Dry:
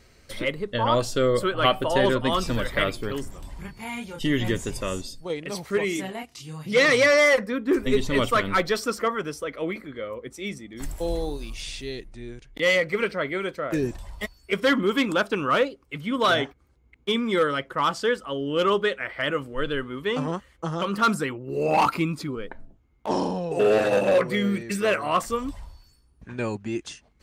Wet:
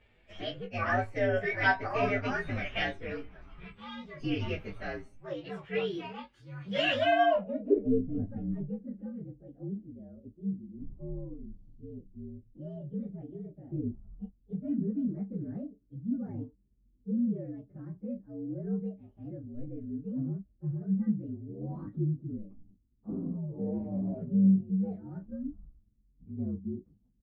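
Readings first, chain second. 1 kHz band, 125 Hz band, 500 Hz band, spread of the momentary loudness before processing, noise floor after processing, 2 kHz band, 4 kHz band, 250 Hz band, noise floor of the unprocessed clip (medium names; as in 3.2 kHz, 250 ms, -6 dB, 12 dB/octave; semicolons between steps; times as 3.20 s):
-10.5 dB, -2.5 dB, -11.5 dB, 14 LU, -68 dBFS, -10.0 dB, -12.5 dB, -4.0 dB, -60 dBFS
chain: frequency axis rescaled in octaves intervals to 120%; low-pass sweep 2.3 kHz -> 220 Hz, 6.94–8.12 s; early reflections 20 ms -7 dB, 36 ms -17 dB; trim -7 dB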